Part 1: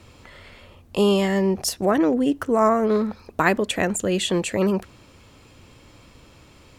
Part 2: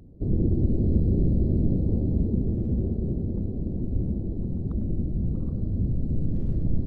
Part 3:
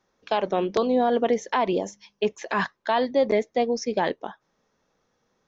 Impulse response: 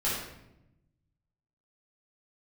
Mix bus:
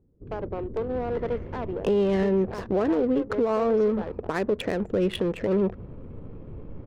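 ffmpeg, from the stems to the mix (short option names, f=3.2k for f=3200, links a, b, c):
-filter_complex "[0:a]bass=f=250:g=4,treble=f=4k:g=-11,acompressor=threshold=-22dB:ratio=4,adelay=900,volume=2dB[a];[1:a]volume=-16.5dB[b];[2:a]highshelf=f=4.7k:g=-6,aeval=exprs='clip(val(0),-1,0.0562)':c=same,volume=-11.5dB[c];[a][b][c]amix=inputs=3:normalize=0,equalizer=f=450:t=o:w=0.67:g=9,adynamicsmooth=sensitivity=2.5:basefreq=790,alimiter=limit=-16dB:level=0:latency=1:release=246"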